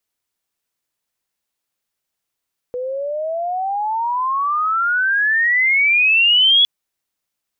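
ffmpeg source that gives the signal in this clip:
ffmpeg -f lavfi -i "aevalsrc='pow(10,(-21.5+12.5*t/3.91)/20)*sin(2*PI*490*3.91/log(3400/490)*(exp(log(3400/490)*t/3.91)-1))':duration=3.91:sample_rate=44100" out.wav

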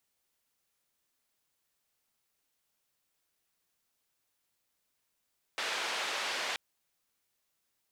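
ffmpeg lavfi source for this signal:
ffmpeg -f lavfi -i "anoisesrc=color=white:duration=0.98:sample_rate=44100:seed=1,highpass=frequency=510,lowpass=frequency=3500,volume=-21.9dB" out.wav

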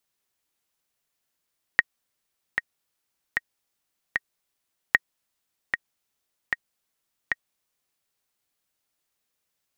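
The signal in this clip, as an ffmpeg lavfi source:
ffmpeg -f lavfi -i "aevalsrc='pow(10,(-2.5-7.5*gte(mod(t,4*60/76),60/76))/20)*sin(2*PI*1880*mod(t,60/76))*exp(-6.91*mod(t,60/76)/0.03)':duration=6.31:sample_rate=44100" out.wav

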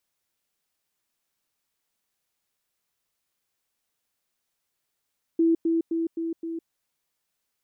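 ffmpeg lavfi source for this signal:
ffmpeg -f lavfi -i "aevalsrc='pow(10,(-17-3*floor(t/0.26))/20)*sin(2*PI*330*t)*clip(min(mod(t,0.26),0.16-mod(t,0.26))/0.005,0,1)':duration=1.3:sample_rate=44100" out.wav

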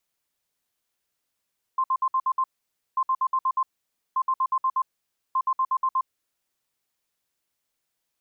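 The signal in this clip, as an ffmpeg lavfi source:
ffmpeg -f lavfi -i "aevalsrc='0.106*sin(2*PI*1050*t)*clip(min(mod(mod(t,1.19),0.12),0.06-mod(mod(t,1.19),0.12))/0.005,0,1)*lt(mod(t,1.19),0.72)':duration=4.76:sample_rate=44100" out.wav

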